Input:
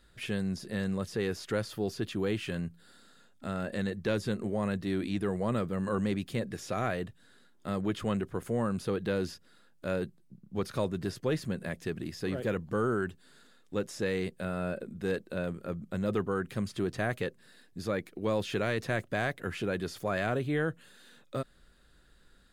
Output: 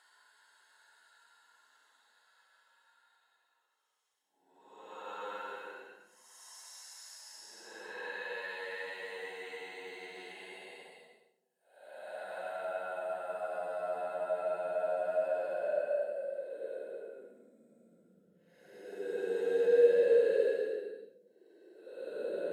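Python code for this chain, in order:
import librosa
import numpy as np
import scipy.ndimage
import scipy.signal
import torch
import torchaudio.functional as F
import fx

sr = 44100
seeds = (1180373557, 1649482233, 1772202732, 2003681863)

y = fx.filter_sweep_highpass(x, sr, from_hz=940.0, to_hz=90.0, start_s=14.04, end_s=17.89, q=4.3)
y = fx.paulstretch(y, sr, seeds[0], factor=11.0, window_s=0.1, from_s=13.3)
y = fx.notch_comb(y, sr, f0_hz=1200.0)
y = F.gain(torch.from_numpy(y), -6.5).numpy()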